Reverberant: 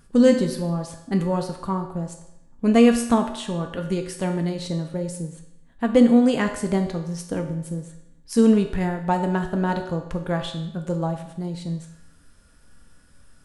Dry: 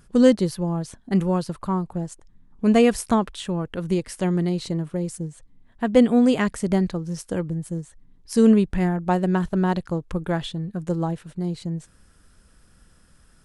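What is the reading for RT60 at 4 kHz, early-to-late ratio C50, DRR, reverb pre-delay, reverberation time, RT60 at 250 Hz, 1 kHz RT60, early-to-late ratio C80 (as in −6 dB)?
0.75 s, 8.5 dB, 4.0 dB, 3 ms, 0.85 s, 0.85 s, 0.85 s, 10.5 dB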